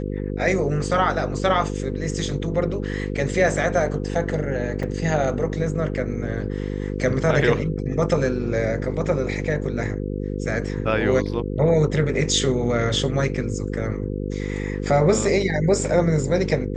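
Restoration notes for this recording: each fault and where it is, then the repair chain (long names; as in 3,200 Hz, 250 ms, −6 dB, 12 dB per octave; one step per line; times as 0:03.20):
mains buzz 50 Hz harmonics 10 −27 dBFS
0:04.83: drop-out 4.4 ms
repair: hum removal 50 Hz, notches 10
repair the gap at 0:04.83, 4.4 ms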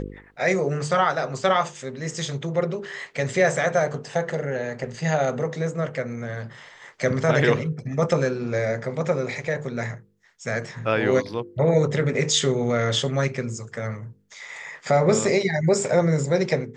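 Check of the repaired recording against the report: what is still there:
none of them is left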